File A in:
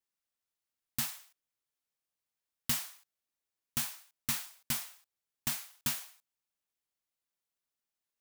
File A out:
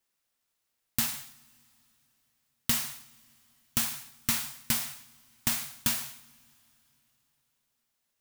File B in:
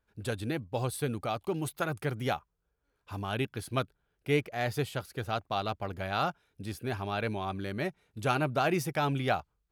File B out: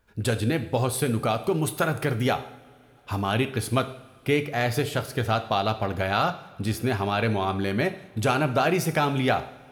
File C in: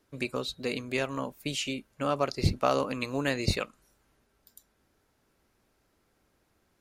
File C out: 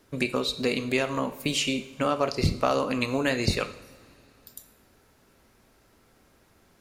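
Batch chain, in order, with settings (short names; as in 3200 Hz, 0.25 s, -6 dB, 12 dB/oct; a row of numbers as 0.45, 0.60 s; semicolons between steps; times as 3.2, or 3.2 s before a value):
compressor 2:1, threshold -36 dBFS; two-slope reverb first 0.63 s, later 3.5 s, from -21 dB, DRR 8.5 dB; normalise peaks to -9 dBFS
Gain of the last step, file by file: +9.0, +12.0, +9.5 dB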